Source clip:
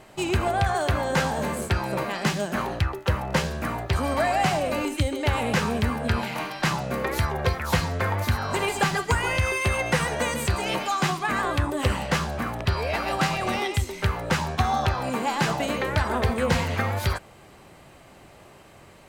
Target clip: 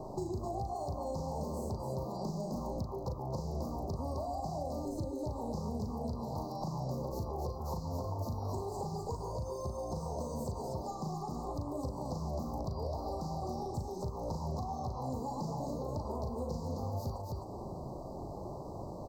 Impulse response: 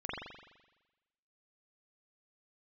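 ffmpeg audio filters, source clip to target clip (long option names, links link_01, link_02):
-filter_complex "[0:a]equalizer=frequency=9900:width=1.3:gain=-15,acompressor=threshold=-30dB:ratio=6,highshelf=frequency=2500:gain=-10.5,asplit=2[link_01][link_02];[link_02]aecho=0:1:37.9|259.5:0.631|0.501[link_03];[link_01][link_03]amix=inputs=2:normalize=0,acrossover=split=96|4100[link_04][link_05][link_06];[link_04]acompressor=threshold=-51dB:ratio=4[link_07];[link_05]acompressor=threshold=-46dB:ratio=4[link_08];[link_06]acompressor=threshold=-59dB:ratio=4[link_09];[link_07][link_08][link_09]amix=inputs=3:normalize=0,asuperstop=centerf=2200:order=12:qfactor=0.63,volume=7.5dB"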